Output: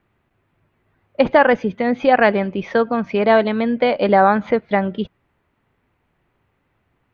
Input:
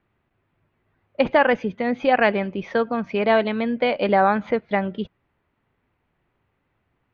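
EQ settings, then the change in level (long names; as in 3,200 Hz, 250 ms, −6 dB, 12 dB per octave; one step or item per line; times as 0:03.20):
dynamic equaliser 2,600 Hz, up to −5 dB, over −38 dBFS, Q 2.2
+4.5 dB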